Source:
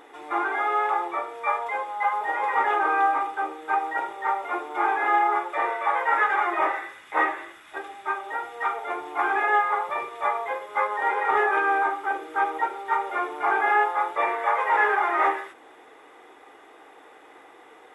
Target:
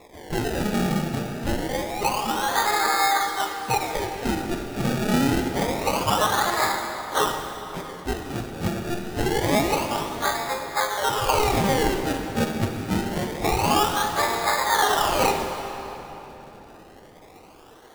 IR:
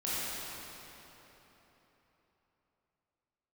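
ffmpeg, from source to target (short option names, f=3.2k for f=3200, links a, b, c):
-filter_complex "[0:a]asettb=1/sr,asplit=3[a][b][c];[a]atrim=end=4.574[d];[b]atrim=start=4.57:end=5.08,asetpts=PTS-STARTPTS,afade=t=in:d=0.004:c=qsin,afade=t=out:st=0.506:d=0.004:c=qsin,lowshelf=f=350:g=-7.5[e];[c]atrim=start=5.076[f];[d][e]acrossfade=d=0.004:c1=hsin:c2=qsin[g];[g][f]acrossfade=d=0.004:c1=qsin:c2=hsin,acrusher=samples=29:mix=1:aa=0.000001:lfo=1:lforange=29:lforate=0.26,asplit=2[h][i];[1:a]atrim=start_sample=2205,adelay=44[j];[i][j]afir=irnorm=-1:irlink=0,volume=-13dB[k];[h][k]amix=inputs=2:normalize=0"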